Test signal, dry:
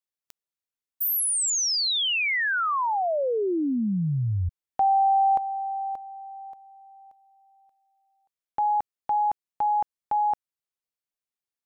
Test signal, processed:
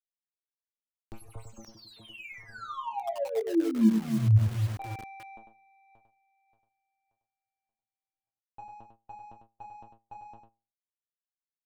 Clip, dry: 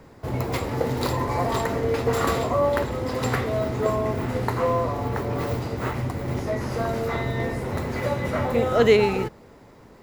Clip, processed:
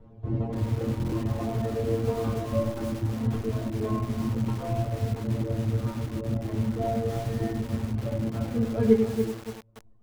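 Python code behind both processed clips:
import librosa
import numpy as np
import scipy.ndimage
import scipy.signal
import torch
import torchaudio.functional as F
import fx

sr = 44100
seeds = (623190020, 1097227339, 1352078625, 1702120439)

p1 = scipy.ndimage.median_filter(x, 25, mode='constant')
p2 = fx.dynamic_eq(p1, sr, hz=260.0, q=1.6, threshold_db=-42.0, ratio=5.0, max_db=7)
p3 = fx.stiff_resonator(p2, sr, f0_hz=110.0, decay_s=0.4, stiffness=0.002)
p4 = fx.dereverb_blind(p3, sr, rt60_s=1.6)
p5 = fx.riaa(p4, sr, side='playback')
p6 = p5 + fx.echo_single(p5, sr, ms=99, db=-7.0, dry=0)
p7 = fx.rider(p6, sr, range_db=3, speed_s=2.0)
p8 = fx.buffer_glitch(p7, sr, at_s=(0.98,), block=1024, repeats=5)
y = fx.echo_crushed(p8, sr, ms=286, feedback_pct=35, bits=6, wet_db=-7)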